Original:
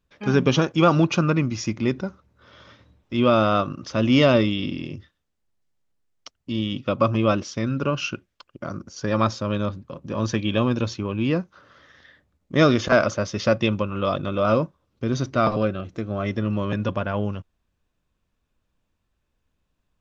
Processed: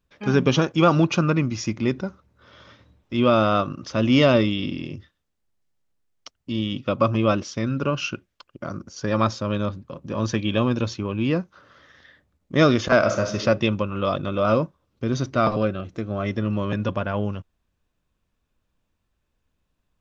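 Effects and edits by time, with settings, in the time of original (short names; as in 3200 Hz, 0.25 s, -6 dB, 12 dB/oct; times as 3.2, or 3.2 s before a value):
12.98–13.39 reverb throw, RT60 0.81 s, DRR 4.5 dB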